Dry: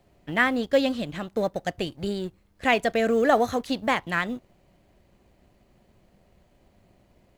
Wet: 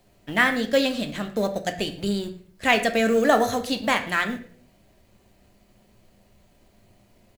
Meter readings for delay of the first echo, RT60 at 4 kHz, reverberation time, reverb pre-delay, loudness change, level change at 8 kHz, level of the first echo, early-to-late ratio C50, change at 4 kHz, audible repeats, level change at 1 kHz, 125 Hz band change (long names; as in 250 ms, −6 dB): 111 ms, 0.40 s, 0.50 s, 3 ms, +2.0 dB, +8.0 dB, −20.5 dB, 11.5 dB, +5.0 dB, 1, +1.5 dB, +1.5 dB